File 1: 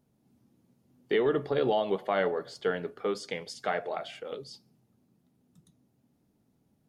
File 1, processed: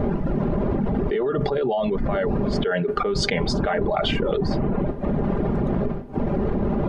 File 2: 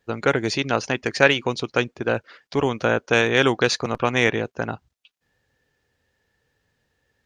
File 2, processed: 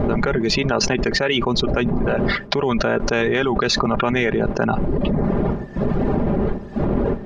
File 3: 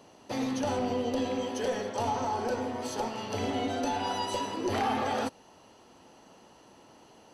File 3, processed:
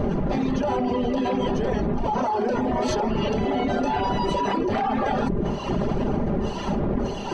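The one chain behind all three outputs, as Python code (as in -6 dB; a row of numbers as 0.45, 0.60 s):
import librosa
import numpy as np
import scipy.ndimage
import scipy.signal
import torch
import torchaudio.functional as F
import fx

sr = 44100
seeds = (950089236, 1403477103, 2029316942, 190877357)

y = fx.dmg_wind(x, sr, seeds[0], corner_hz=350.0, level_db=-33.0)
y = fx.dereverb_blind(y, sr, rt60_s=0.79)
y = fx.spacing_loss(y, sr, db_at_10k=24)
y = y + 0.46 * np.pad(y, (int(5.0 * sr / 1000.0), 0))[:len(y)]
y = fx.env_flatten(y, sr, amount_pct=100)
y = y * 10.0 ** (-5.5 / 20.0)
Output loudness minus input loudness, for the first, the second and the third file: +7.5, +1.5, +7.0 LU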